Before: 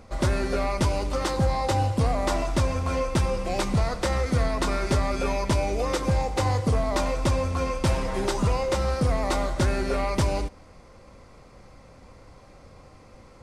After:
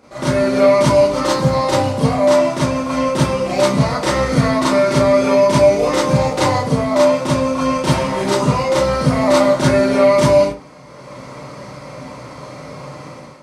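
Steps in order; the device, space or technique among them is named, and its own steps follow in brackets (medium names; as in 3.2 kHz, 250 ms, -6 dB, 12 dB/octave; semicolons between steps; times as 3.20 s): far laptop microphone (reverberation RT60 0.30 s, pre-delay 30 ms, DRR -8 dB; high-pass 170 Hz 12 dB/octave; level rider); trim -1 dB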